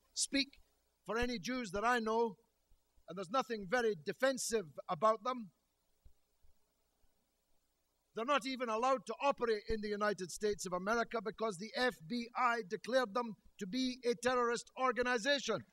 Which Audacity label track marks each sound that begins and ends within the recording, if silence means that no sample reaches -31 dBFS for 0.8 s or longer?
3.340000	5.320000	sound